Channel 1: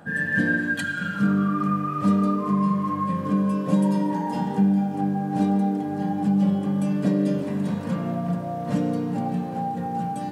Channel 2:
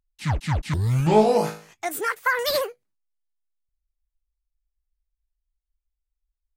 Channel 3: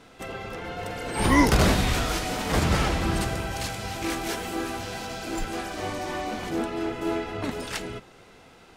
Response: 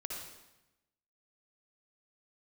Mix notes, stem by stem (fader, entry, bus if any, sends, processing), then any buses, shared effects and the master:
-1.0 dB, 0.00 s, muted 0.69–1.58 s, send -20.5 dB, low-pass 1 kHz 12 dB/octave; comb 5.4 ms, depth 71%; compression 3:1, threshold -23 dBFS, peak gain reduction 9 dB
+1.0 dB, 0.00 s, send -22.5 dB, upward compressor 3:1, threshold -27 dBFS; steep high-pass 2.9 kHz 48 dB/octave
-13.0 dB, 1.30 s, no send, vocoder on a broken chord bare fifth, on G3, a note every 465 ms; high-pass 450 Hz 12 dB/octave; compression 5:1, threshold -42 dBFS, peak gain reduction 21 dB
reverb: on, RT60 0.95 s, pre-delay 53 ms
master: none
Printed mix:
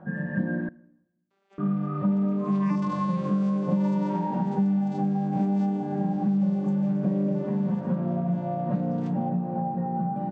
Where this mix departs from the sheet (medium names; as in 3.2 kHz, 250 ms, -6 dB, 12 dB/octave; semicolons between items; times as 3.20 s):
stem 2: muted; stem 3: missing compression 5:1, threshold -42 dBFS, peak gain reduction 21 dB